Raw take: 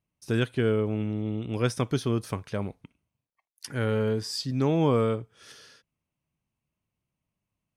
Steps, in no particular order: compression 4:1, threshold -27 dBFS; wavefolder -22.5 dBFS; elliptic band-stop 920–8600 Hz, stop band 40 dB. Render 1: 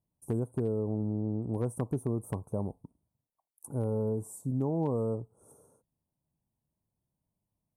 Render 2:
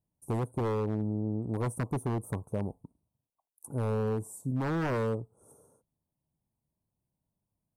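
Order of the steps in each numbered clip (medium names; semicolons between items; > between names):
compression > elliptic band-stop > wavefolder; elliptic band-stop > wavefolder > compression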